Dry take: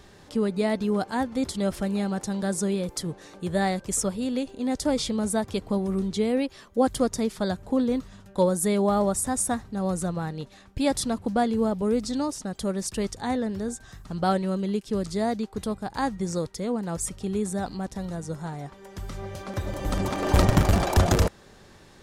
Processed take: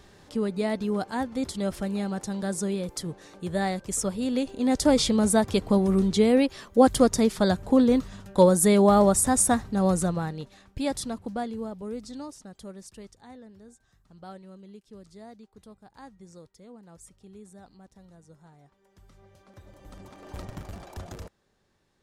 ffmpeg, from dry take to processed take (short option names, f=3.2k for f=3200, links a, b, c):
-af "volume=4.5dB,afade=t=in:st=3.96:d=0.92:silence=0.446684,afade=t=out:st=9.86:d=0.53:silence=0.473151,afade=t=out:st=10.39:d=1.31:silence=0.354813,afade=t=out:st=12.22:d=1.05:silence=0.354813"